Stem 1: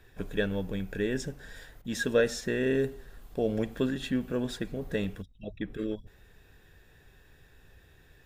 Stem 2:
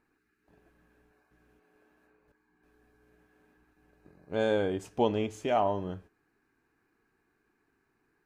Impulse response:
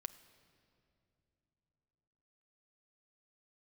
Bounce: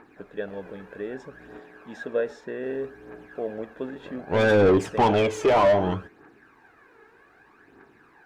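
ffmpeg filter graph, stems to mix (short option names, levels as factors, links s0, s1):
-filter_complex "[0:a]bandpass=f=680:t=q:w=0.9:csg=0,volume=1.06[s0];[1:a]aphaser=in_gain=1:out_gain=1:delay=2.4:decay=0.6:speed=0.64:type=triangular,asplit=2[s1][s2];[s2]highpass=f=720:p=1,volume=22.4,asoftclip=type=tanh:threshold=0.224[s3];[s1][s3]amix=inputs=2:normalize=0,lowpass=f=1100:p=1,volume=0.501,volume=1.41[s4];[s0][s4]amix=inputs=2:normalize=0"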